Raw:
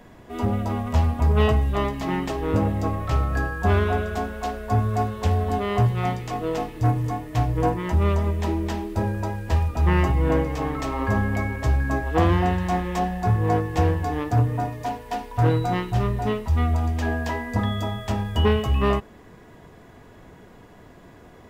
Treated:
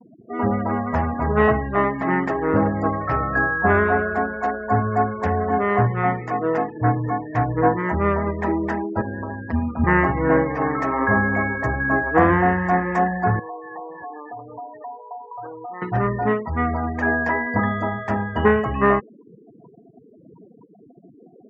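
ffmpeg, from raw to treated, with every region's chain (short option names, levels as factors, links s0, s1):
-filter_complex "[0:a]asettb=1/sr,asplit=3[s0][s1][s2];[s0]atrim=end=9.014[s3];[s1]atrim=start=9.01:end=9.84,asetpts=PTS-STARTPTS,afade=t=in:d=0.004:c=qsin,afade=t=out:st=0.826:d=0.004:c=qsin,asubboost=boost=8:cutoff=150,acrossover=split=130|3000[s4][s5][s6];[s5]acompressor=threshold=0.0447:ratio=8:attack=3.2:release=140:knee=2.83:detection=peak[s7];[s4][s7][s6]amix=inputs=3:normalize=0,tremolo=f=160:d=0.824[s8];[s2]atrim=start=9.836[s9];[s3][s8]acrossfade=d=0.004:c1=hsin:c2=qsin[s10];[s10][s9]acrossfade=d=0.004:c1=qsin:c2=hsin,asettb=1/sr,asplit=3[s11][s12][s13];[s11]atrim=end=13.394[s14];[s12]atrim=start=13.39:end=15.82,asetpts=PTS-STARTPTS,afade=t=in:d=0.004:c=qsin,afade=t=out:st=2.426:d=0.004:c=qsin,bandpass=f=910:t=q:w=1,acompressor=threshold=0.0126:ratio=4:attack=3.2:release=140:knee=1:detection=peak[s15];[s13]atrim=start=15.816[s16];[s14][s15]acrossfade=d=0.004:c1=hsin:c2=qsin[s17];[s17][s16]acrossfade=d=0.004:c1=qsin:c2=hsin,highpass=150,afftfilt=real='re*gte(hypot(re,im),0.0158)':imag='im*gte(hypot(re,im),0.0158)':win_size=1024:overlap=0.75,highshelf=f=2400:t=q:w=3:g=-10,volume=1.68"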